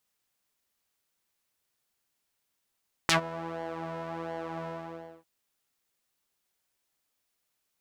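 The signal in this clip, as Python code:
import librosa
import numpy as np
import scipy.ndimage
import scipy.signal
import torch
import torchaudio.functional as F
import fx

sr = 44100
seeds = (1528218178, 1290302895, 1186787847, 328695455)

y = fx.sub_patch_pwm(sr, seeds[0], note=52, wave2='saw', interval_st=0, detune_cents=28, level2_db=-9.0, sub_db=-14.0, noise_db=-30.0, kind='bandpass', cutoff_hz=630.0, q=1.3, env_oct=3.5, env_decay_s=0.08, env_sustain_pct=10, attack_ms=2.2, decay_s=0.11, sustain_db=-23.0, release_s=0.59, note_s=1.56, lfo_hz=1.4, width_pct=28, width_swing_pct=15)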